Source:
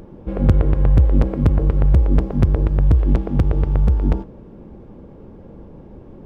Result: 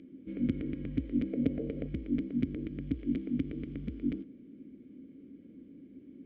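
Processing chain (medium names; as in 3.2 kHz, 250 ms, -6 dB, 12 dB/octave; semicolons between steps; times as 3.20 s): vowel filter i; 1.33–1.88 s: high-order bell 570 Hz +12.5 dB 1 oct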